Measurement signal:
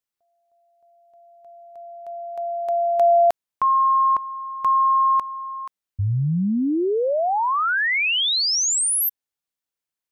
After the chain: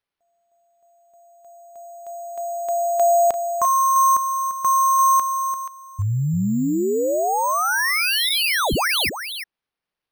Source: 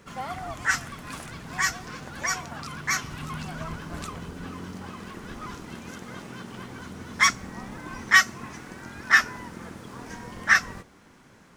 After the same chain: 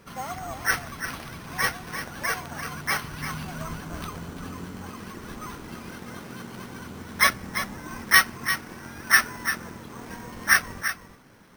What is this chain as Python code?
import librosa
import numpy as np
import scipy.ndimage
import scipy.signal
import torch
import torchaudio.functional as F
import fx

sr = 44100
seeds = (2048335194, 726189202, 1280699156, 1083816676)

y = x + 10.0 ** (-9.5 / 20.0) * np.pad(x, (int(344 * sr / 1000.0), 0))[:len(x)]
y = np.repeat(y[::6], 6)[:len(y)]